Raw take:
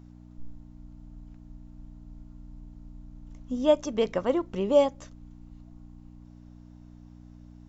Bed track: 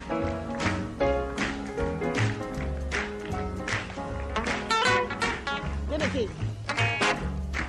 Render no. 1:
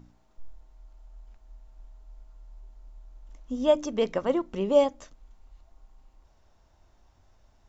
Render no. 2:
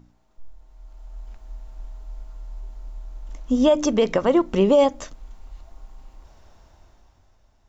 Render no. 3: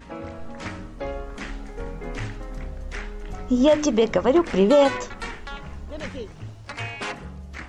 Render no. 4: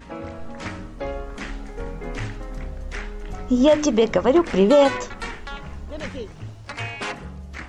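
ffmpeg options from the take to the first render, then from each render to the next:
-af "bandreject=f=60:t=h:w=4,bandreject=f=120:t=h:w=4,bandreject=f=180:t=h:w=4,bandreject=f=240:t=h:w=4,bandreject=f=300:t=h:w=4"
-af "alimiter=limit=-20.5dB:level=0:latency=1:release=104,dynaudnorm=f=110:g=17:m=12dB"
-filter_complex "[1:a]volume=-6.5dB[a];[0:a][a]amix=inputs=2:normalize=0"
-af "volume=1.5dB"

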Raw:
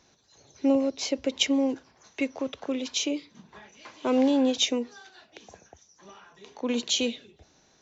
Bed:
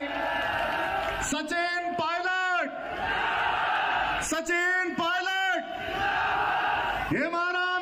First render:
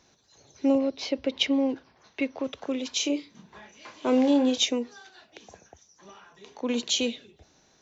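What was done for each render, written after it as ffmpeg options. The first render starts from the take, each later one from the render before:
-filter_complex "[0:a]asettb=1/sr,asplit=3[a][b][c];[a]atrim=end=0.784[d];[b]atrim=start=0.78:end=2.44,asetpts=PTS-STARTPTS,afade=t=in:d=0.004:c=qsin,afade=t=out:st=1.656:d=0.004:c=qsin,lowpass=f=4.9k:w=0.5412,lowpass=f=4.9k:w=1.3066[e];[c]atrim=start=2.436[f];[d][e]acrossfade=d=0.004:c1=hsin:c2=qsin[g];[g][f]acrossfade=d=0.004:c1=qsin:c2=hsin,asettb=1/sr,asplit=3[h][i][j];[h]atrim=end=2.974[k];[i]atrim=start=2.97:end=4.64,asetpts=PTS-STARTPTS,afade=t=in:d=0.004:c=qsin,afade=t=out:st=1.666:d=0.004:c=qsin,asplit=2[l][m];[m]adelay=28,volume=-8dB[n];[l][n]amix=inputs=2:normalize=0,atrim=end_sample=73647[o];[j]atrim=start=4.636[p];[k][o]acrossfade=d=0.004:c1=hsin:c2=qsin[q];[q][p]acrossfade=d=0.004:c1=qsin:c2=hsin"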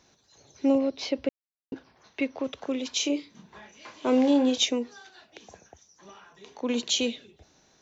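-filter_complex "[0:a]asplit=3[a][b][c];[a]atrim=end=1.29,asetpts=PTS-STARTPTS,afade=t=out:st=1.286:d=0.004:c=hsin[d];[b]atrim=start=1.29:end=1.72,asetpts=PTS-STARTPTS,volume=0[e];[c]atrim=start=1.72,asetpts=PTS-STARTPTS,afade=t=in:d=0.004:c=hsin[f];[d][e][f]concat=n=3:v=0:a=1"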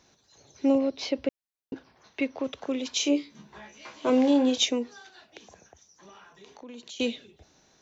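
-filter_complex "[0:a]asettb=1/sr,asplit=3[a][b][c];[a]atrim=end=3.054[d];[b]atrim=start=3.05:end=4.1,asetpts=PTS-STARTPTS,afade=t=in:d=0.004:c=qsin,afade=t=out:st=1.046:d=0.004:c=qsin,asplit=2[e][f];[f]adelay=14,volume=-5.5dB[g];[e][g]amix=inputs=2:normalize=0,atrim=end_sample=46305[h];[c]atrim=start=4.096[i];[d][h]acrossfade=d=0.004:c1=hsin:c2=qsin[j];[j][i]acrossfade=d=0.004:c1=qsin:c2=hsin,asettb=1/sr,asplit=3[k][l][m];[k]atrim=end=5.434[n];[l]atrim=start=5.43:end=7,asetpts=PTS-STARTPTS,afade=t=in:d=0.004:c=qsin,afade=t=out:st=1.566:d=0.004:c=qsin,acompressor=threshold=-46dB:ratio=3:attack=3.2:release=140:knee=1:detection=peak[o];[m]atrim=start=6.996[p];[n][o]acrossfade=d=0.004:c1=hsin:c2=qsin[q];[q][p]acrossfade=d=0.004:c1=qsin:c2=hsin"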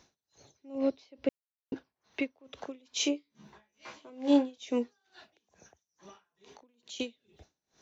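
-af "aeval=exprs='val(0)*pow(10,-30*(0.5-0.5*cos(2*PI*2.3*n/s))/20)':c=same"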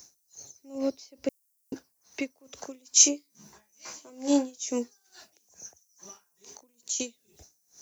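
-af "aexciter=amount=15.6:drive=1.3:freq=5.2k"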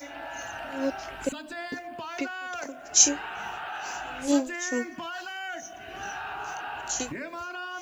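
-filter_complex "[1:a]volume=-9.5dB[a];[0:a][a]amix=inputs=2:normalize=0"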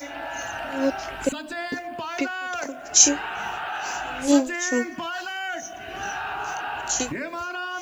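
-af "volume=5.5dB,alimiter=limit=-3dB:level=0:latency=1"

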